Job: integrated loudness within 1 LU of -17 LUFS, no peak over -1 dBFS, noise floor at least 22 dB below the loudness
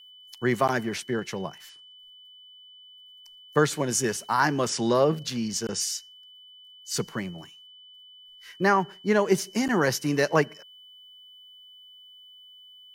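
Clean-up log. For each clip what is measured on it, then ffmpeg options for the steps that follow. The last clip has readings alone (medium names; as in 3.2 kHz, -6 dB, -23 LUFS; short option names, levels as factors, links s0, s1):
steady tone 3 kHz; tone level -48 dBFS; loudness -26.0 LUFS; peak level -6.5 dBFS; loudness target -17.0 LUFS
-> -af "bandreject=f=3000:w=30"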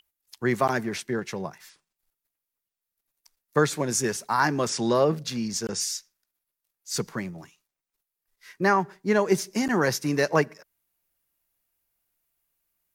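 steady tone not found; loudness -26.0 LUFS; peak level -7.0 dBFS; loudness target -17.0 LUFS
-> -af "volume=2.82,alimiter=limit=0.891:level=0:latency=1"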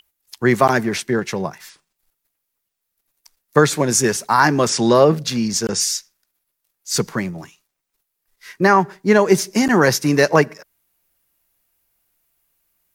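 loudness -17.0 LUFS; peak level -1.0 dBFS; noise floor -77 dBFS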